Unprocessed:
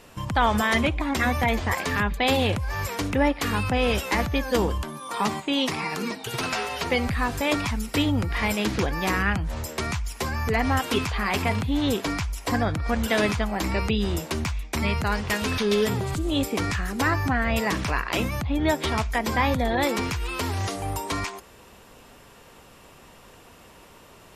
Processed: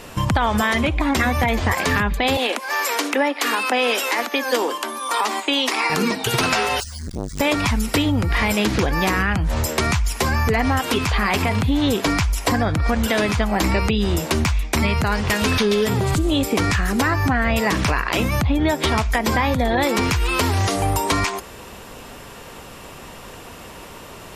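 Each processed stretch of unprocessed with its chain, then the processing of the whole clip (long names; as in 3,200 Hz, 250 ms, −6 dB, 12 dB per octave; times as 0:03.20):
0:02.37–0:05.90: Butterworth high-pass 230 Hz 72 dB per octave + low-shelf EQ 340 Hz −12 dB
0:06.80–0:07.40: inverse Chebyshev band-stop filter 200–1,900 Hz, stop band 60 dB + bad sample-rate conversion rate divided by 3×, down none, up hold + saturating transformer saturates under 550 Hz
whole clip: downward compressor, threshold −27 dBFS; boost into a limiter +19 dB; level −7.5 dB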